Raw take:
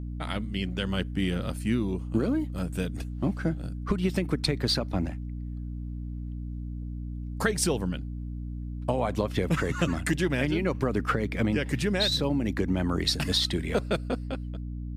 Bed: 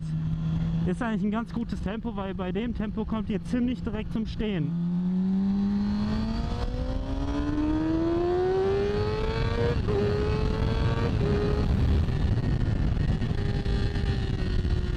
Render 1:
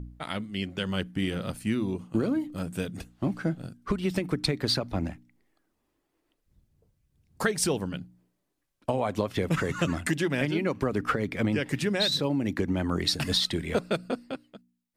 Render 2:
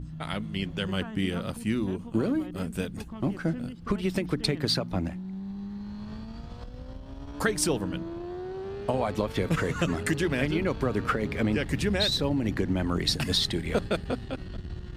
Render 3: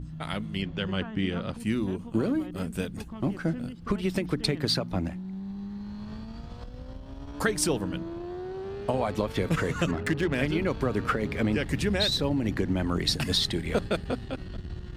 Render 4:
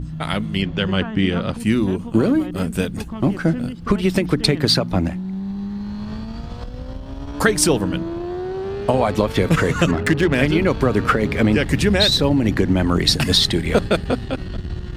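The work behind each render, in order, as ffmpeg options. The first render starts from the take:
-af "bandreject=f=60:t=h:w=4,bandreject=f=120:t=h:w=4,bandreject=f=180:t=h:w=4,bandreject=f=240:t=h:w=4,bandreject=f=300:t=h:w=4"
-filter_complex "[1:a]volume=-11.5dB[a];[0:a][a]amix=inputs=2:normalize=0"
-filter_complex "[0:a]asettb=1/sr,asplit=3[a][b][c];[a]atrim=end=0.624[d];[b]atrim=start=0.62:end=1.6,asetpts=PTS-STARTPTS,afade=t=in:d=0.004:c=qsin,afade=t=out:st=0.976:d=0.004:c=qsin,lowpass=4.6k[e];[c]atrim=start=1.596[f];[d][e]acrossfade=d=0.004:c1=hsin:c2=qsin[g];[g][f]acrossfade=d=0.004:c1=qsin:c2=hsin,asettb=1/sr,asplit=3[h][i][j];[h]atrim=end=9.914[k];[i]atrim=start=9.91:end=10.35,asetpts=PTS-STARTPTS,afade=t=in:d=0.004:c=qsin,afade=t=out:st=0.436:d=0.004:c=qsin,adynamicsmooth=sensitivity=5:basefreq=1.6k[l];[j]atrim=start=10.346[m];[k][l]acrossfade=d=0.004:c1=hsin:c2=qsin[n];[n][m]acrossfade=d=0.004:c1=qsin:c2=hsin"
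-af "volume=10dB"

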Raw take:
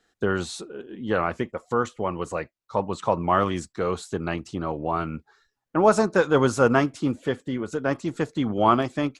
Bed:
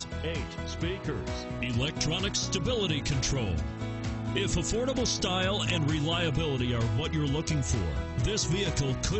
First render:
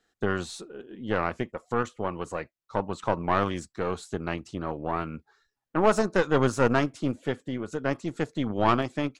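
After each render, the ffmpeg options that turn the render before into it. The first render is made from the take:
-af "aeval=exprs='(tanh(4.47*val(0)+0.75)-tanh(0.75))/4.47':c=same"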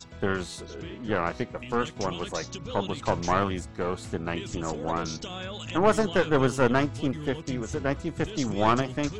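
-filter_complex "[1:a]volume=-8.5dB[a];[0:a][a]amix=inputs=2:normalize=0"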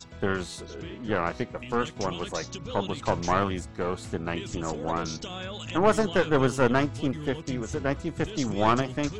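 -af anull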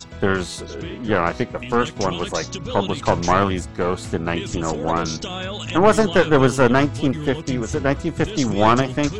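-af "volume=8dB,alimiter=limit=-2dB:level=0:latency=1"

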